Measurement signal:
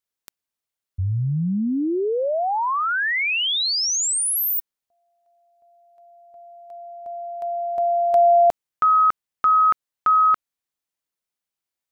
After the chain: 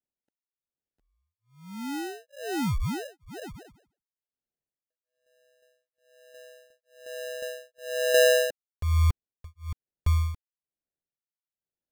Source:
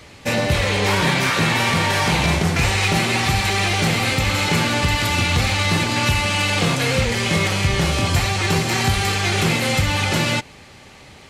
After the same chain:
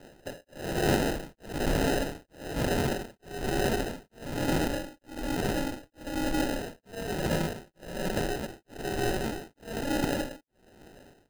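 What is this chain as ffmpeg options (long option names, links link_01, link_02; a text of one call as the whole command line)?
ffmpeg -i in.wav -af "tremolo=f=1.1:d=1,highpass=frequency=380:width_type=q:width=0.5412,highpass=frequency=380:width_type=q:width=1.307,lowpass=frequency=2600:width_type=q:width=0.5176,lowpass=frequency=2600:width_type=q:width=0.7071,lowpass=frequency=2600:width_type=q:width=1.932,afreqshift=-58,acrusher=samples=39:mix=1:aa=0.000001,volume=-3.5dB" out.wav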